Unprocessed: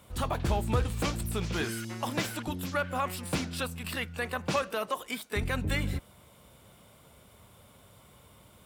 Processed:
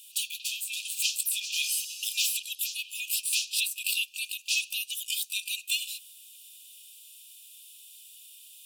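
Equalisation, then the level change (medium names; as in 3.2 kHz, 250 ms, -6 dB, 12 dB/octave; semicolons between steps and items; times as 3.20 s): brick-wall FIR high-pass 2.4 kHz; treble shelf 6.7 kHz +6 dB; +9.0 dB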